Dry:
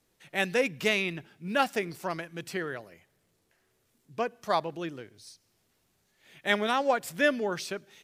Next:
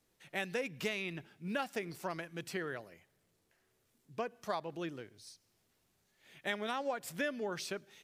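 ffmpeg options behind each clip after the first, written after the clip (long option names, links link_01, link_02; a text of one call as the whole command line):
ffmpeg -i in.wav -af "acompressor=threshold=-29dB:ratio=5,volume=-4dB" out.wav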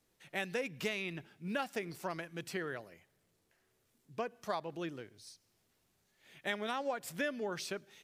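ffmpeg -i in.wav -af anull out.wav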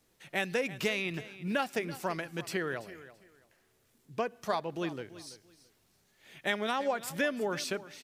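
ffmpeg -i in.wav -af "aecho=1:1:334|668:0.158|0.0349,volume=5.5dB" out.wav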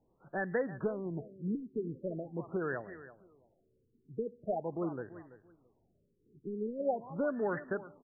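ffmpeg -i in.wav -af "asoftclip=type=tanh:threshold=-17dB,afftfilt=real='re*lt(b*sr/1024,460*pow(2000/460,0.5+0.5*sin(2*PI*0.43*pts/sr)))':imag='im*lt(b*sr/1024,460*pow(2000/460,0.5+0.5*sin(2*PI*0.43*pts/sr)))':win_size=1024:overlap=0.75" out.wav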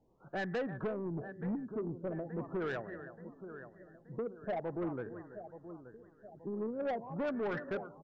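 ffmpeg -i in.wav -af "aecho=1:1:877|1754|2631|3508:0.178|0.0818|0.0376|0.0173,aresample=16000,asoftclip=type=tanh:threshold=-33dB,aresample=44100,volume=2dB" out.wav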